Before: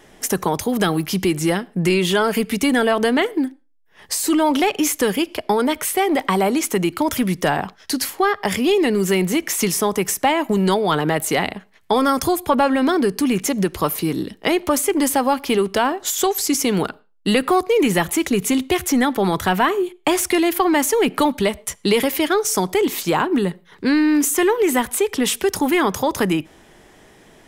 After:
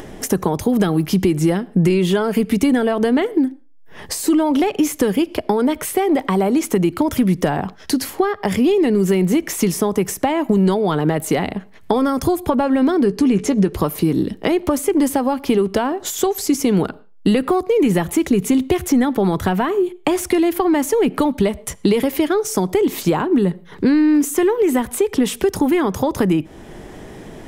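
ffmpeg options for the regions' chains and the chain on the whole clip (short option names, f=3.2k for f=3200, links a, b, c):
-filter_complex "[0:a]asettb=1/sr,asplit=3[a][b][c];[a]atrim=end=13.044[d];[b]atrim=start=13.04:end=13.73,asetpts=PTS-STARTPTS,afade=t=in:d=0.004:c=qsin,afade=t=out:st=0.686:d=0.004:c=qsin,lowpass=8.3k,aeval=exprs='val(0)+0.0178*sin(2*PI*430*n/s)':c=same,asplit=2[e][f];[f]adelay=15,volume=-13dB[g];[e][g]amix=inputs=2:normalize=0,atrim=end_sample=30429[h];[c]atrim=start=13.726[i];[d][h]acrossfade=d=0.004:c1=hsin:c2=qsin[j];[j][i]acrossfade=d=0.004:c1=qsin:c2=hsin,acompressor=threshold=-27dB:ratio=3,tiltshelf=f=730:g=5.5,acompressor=mode=upward:threshold=-38dB:ratio=2.5,volume=8dB"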